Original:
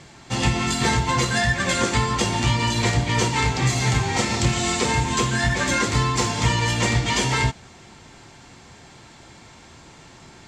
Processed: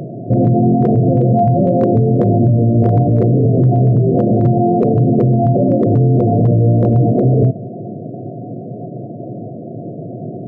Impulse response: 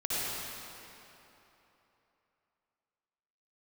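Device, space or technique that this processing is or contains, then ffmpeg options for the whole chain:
loud club master: -af "afftfilt=real='re*between(b*sr/4096,100,730)':imag='im*between(b*sr/4096,100,730)':win_size=4096:overlap=0.75,highshelf=frequency=2400:gain=8.5,acompressor=threshold=-24dB:ratio=2,asoftclip=type=hard:threshold=-17.5dB,alimiter=level_in=27dB:limit=-1dB:release=50:level=0:latency=1,volume=-4.5dB"

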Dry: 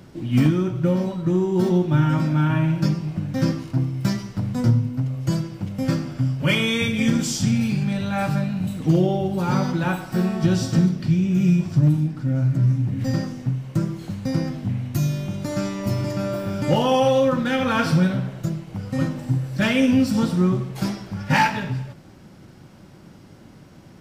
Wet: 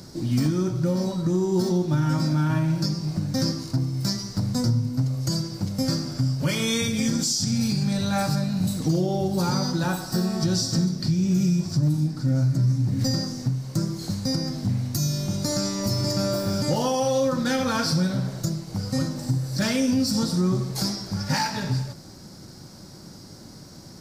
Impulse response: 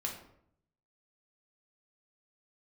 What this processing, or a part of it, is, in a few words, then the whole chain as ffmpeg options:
over-bright horn tweeter: -filter_complex "[0:a]asettb=1/sr,asplit=3[link_01][link_02][link_03];[link_01]atrim=end=9.654[link_04];[link_02]atrim=start=9.65:end=10.3,asetpts=PTS-STARTPTS,afade=type=in:duration=0.004:curve=qsin,afade=type=out:start_time=0.646:duration=0.004:curve=qsin,bandreject=frequency=2200:width=10[link_05];[link_03]atrim=start=10.296[link_06];[link_04][link_05]acrossfade=duration=0.004:curve1=hsin:curve2=qsin[link_07];[link_07][link_06]acrossfade=duration=0.004:curve1=qsin:curve2=hsin,highshelf=frequency=3700:width_type=q:width=3:gain=8,alimiter=limit=-16dB:level=0:latency=1:release=291,volume=1.5dB"

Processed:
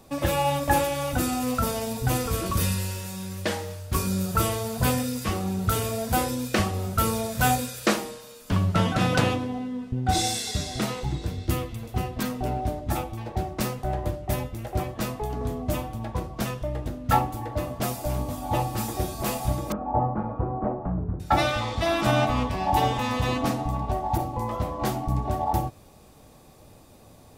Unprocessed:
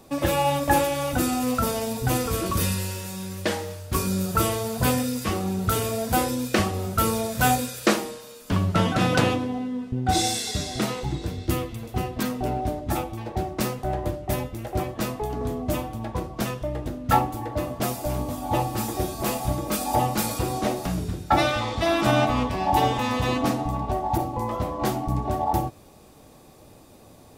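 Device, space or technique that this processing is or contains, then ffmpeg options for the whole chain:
low shelf boost with a cut just above: -filter_complex "[0:a]lowshelf=frequency=110:gain=4,equalizer=frequency=330:width_type=o:width=0.83:gain=-3,asettb=1/sr,asplit=3[link_01][link_02][link_03];[link_01]atrim=end=19.724[link_04];[link_02]atrim=start=19.72:end=21.2,asetpts=PTS-STARTPTS,afade=type=in:duration=0.004:curve=qsin,afade=type=out:start_time=1.476:duration=0.004:curve=qsin,lowpass=frequency=1200:width=0.5412,lowpass=frequency=1200:width=1.3066[link_05];[link_03]atrim=start=21.196[link_06];[link_04][link_05]acrossfade=duration=0.004:curve1=hsin:curve2=qsin[link_07];[link_07][link_06]acrossfade=duration=0.004:curve1=qsin:curve2=hsin,volume=-1.5dB"

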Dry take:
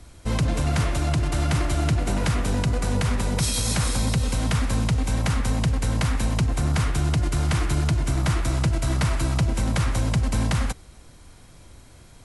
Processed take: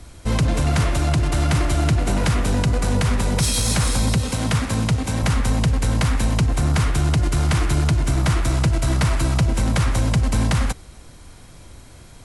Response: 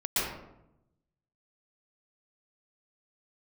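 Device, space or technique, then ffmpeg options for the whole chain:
parallel distortion: -filter_complex "[0:a]asplit=2[link_01][link_02];[link_02]asoftclip=type=hard:threshold=-25.5dB,volume=-10dB[link_03];[link_01][link_03]amix=inputs=2:normalize=0,asettb=1/sr,asplit=3[link_04][link_05][link_06];[link_04]atrim=end=4.164[link_07];[link_05]atrim=start=4.16:end=5.23,asetpts=PTS-STARTPTS,afade=type=in:duration=0.004:curve=qsin,afade=type=out:start_time=1.066:duration=0.004:curve=qsin,highpass=frequency=67:width=0.5412,highpass=frequency=67:width=1.3066[link_08];[link_06]atrim=start=5.226[link_09];[link_07][link_08]acrossfade=duration=0.004:curve1=hsin:curve2=qsin[link_10];[link_10][link_09]acrossfade=duration=0.004:curve1=qsin:curve2=hsin,volume=2.5dB"

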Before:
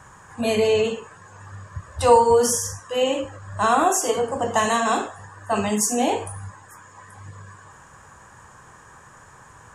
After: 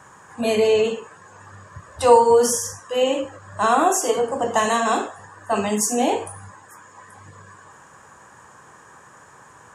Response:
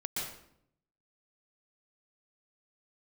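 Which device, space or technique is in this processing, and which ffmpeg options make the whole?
filter by subtraction: -filter_complex "[0:a]asplit=2[link_01][link_02];[link_02]lowpass=310,volume=-1[link_03];[link_01][link_03]amix=inputs=2:normalize=0"

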